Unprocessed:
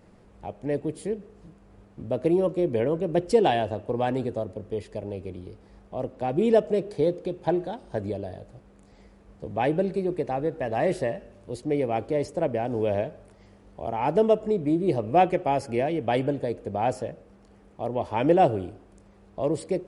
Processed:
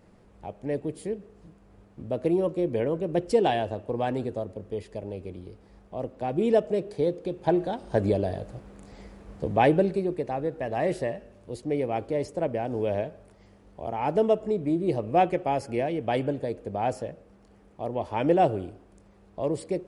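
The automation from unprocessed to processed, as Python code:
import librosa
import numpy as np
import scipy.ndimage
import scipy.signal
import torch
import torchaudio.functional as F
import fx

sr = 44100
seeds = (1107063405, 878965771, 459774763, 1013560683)

y = fx.gain(x, sr, db=fx.line((7.17, -2.0), (8.11, 7.0), (9.45, 7.0), (10.16, -2.0)))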